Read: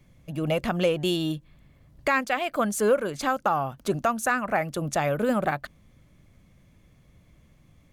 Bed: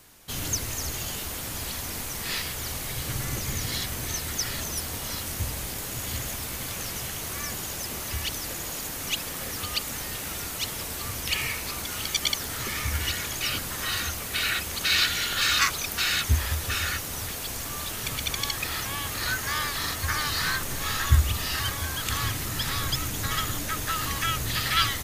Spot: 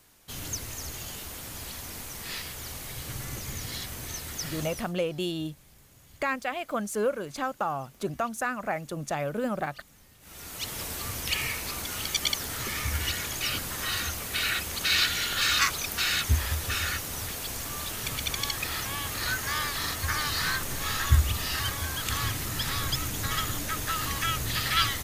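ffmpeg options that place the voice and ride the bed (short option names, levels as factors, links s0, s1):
-filter_complex "[0:a]adelay=4150,volume=0.531[s0];[1:a]volume=7.5,afade=t=out:st=4.6:d=0.34:silence=0.112202,afade=t=in:st=10.2:d=0.62:silence=0.0668344[s1];[s0][s1]amix=inputs=2:normalize=0"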